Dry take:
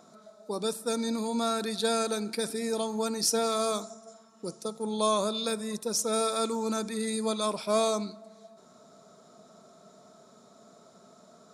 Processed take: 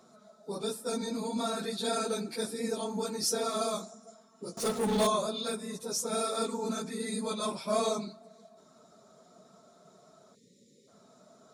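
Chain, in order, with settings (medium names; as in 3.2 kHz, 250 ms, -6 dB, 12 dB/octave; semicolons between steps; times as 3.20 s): phase randomisation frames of 50 ms; 4.57–5.07 s: power-law waveshaper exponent 0.5; 10.35–10.88 s: spectral selection erased 580–1800 Hz; trim -3.5 dB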